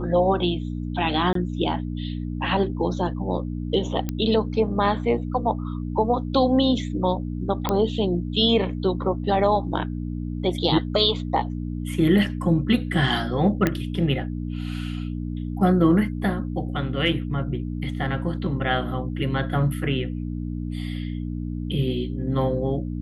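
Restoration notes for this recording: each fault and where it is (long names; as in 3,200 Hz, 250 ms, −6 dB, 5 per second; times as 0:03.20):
mains hum 60 Hz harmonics 5 −29 dBFS
0:01.33–0:01.35: drop-out 23 ms
0:04.09: click −13 dBFS
0:07.69: click −9 dBFS
0:13.67: click −8 dBFS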